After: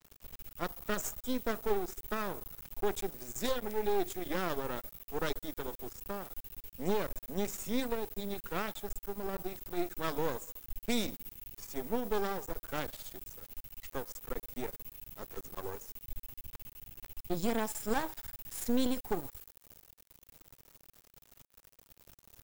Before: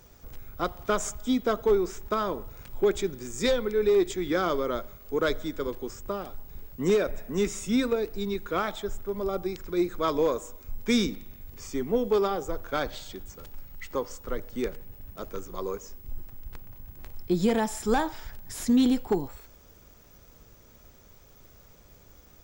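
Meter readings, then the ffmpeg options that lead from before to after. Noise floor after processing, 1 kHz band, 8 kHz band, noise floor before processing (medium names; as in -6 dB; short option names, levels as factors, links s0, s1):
-72 dBFS, -6.5 dB, -4.5 dB, -55 dBFS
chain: -af "aeval=exprs='max(val(0),0)':c=same,highshelf=f=11000:g=3,acrusher=bits=7:mix=0:aa=0.000001,adynamicequalizer=threshold=0.00158:dfrequency=7700:dqfactor=0.7:tfrequency=7700:tqfactor=0.7:attack=5:release=100:ratio=0.375:range=4:mode=boostabove:tftype=highshelf,volume=0.562"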